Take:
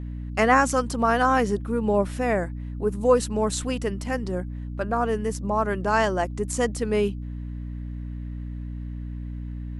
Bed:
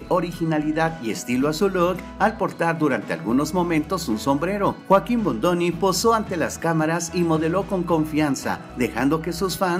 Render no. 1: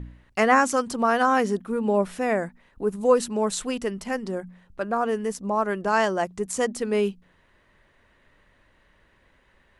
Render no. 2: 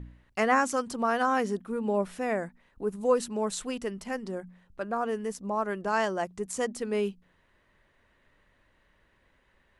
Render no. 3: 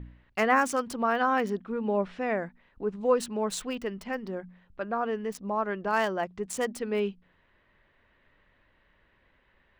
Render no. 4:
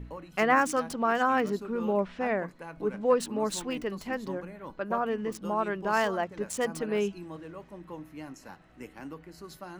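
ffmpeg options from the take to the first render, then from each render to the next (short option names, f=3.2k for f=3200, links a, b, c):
-af "bandreject=f=60:t=h:w=4,bandreject=f=120:t=h:w=4,bandreject=f=180:t=h:w=4,bandreject=f=240:t=h:w=4,bandreject=f=300:t=h:w=4"
-af "volume=-5.5dB"
-filter_complex "[0:a]acrossover=split=3700[a][b];[a]crystalizer=i=2.5:c=0[c];[b]aeval=exprs='val(0)*gte(abs(val(0)),0.0106)':c=same[d];[c][d]amix=inputs=2:normalize=0"
-filter_complex "[1:a]volume=-22dB[a];[0:a][a]amix=inputs=2:normalize=0"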